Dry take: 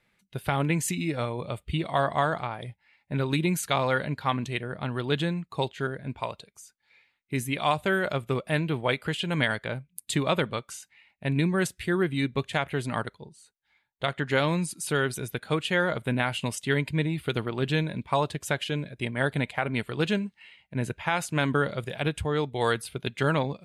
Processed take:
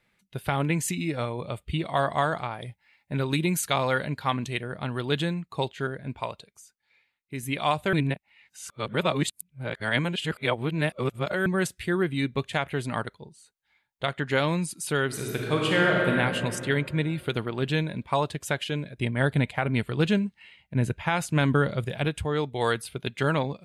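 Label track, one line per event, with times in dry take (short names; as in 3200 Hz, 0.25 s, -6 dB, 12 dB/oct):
1.970000	5.350000	high shelf 5200 Hz +4.5 dB
6.290000	7.430000	fade out quadratic, to -6 dB
7.930000	11.460000	reverse
15.060000	16.110000	reverb throw, RT60 2.6 s, DRR -2 dB
18.970000	22.050000	low shelf 210 Hz +8 dB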